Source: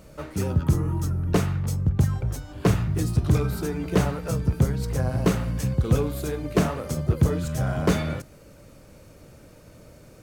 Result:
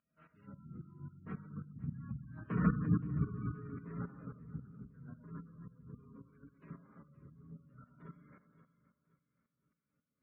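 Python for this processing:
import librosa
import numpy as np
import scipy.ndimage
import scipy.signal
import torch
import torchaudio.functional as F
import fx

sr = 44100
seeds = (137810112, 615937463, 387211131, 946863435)

y = fx.tracing_dist(x, sr, depth_ms=0.098)
y = fx.doppler_pass(y, sr, speed_mps=20, closest_m=3.8, pass_at_s=2.68)
y = fx.band_shelf(y, sr, hz=520.0, db=-12.5, octaves=1.7)
y = fx.rev_plate(y, sr, seeds[0], rt60_s=1.9, hf_ratio=0.3, predelay_ms=0, drr_db=-5.5)
y = fx.spec_gate(y, sr, threshold_db=-30, keep='strong')
y = scipy.signal.sosfilt(scipy.signal.butter(2, 190.0, 'highpass', fs=sr, output='sos'), y)
y = fx.volume_shaper(y, sr, bpm=111, per_beat=2, depth_db=-12, release_ms=210.0, shape='slow start')
y = fx.echo_feedback(y, sr, ms=523, feedback_pct=39, wet_db=-18.0)
y = fx.env_lowpass_down(y, sr, base_hz=1700.0, full_db=-49.0)
y = scipy.signal.sosfilt(scipy.signal.butter(6, 3100.0, 'lowpass', fs=sr, output='sos'), y)
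y = y * 10.0 ** (-2.0 / 20.0)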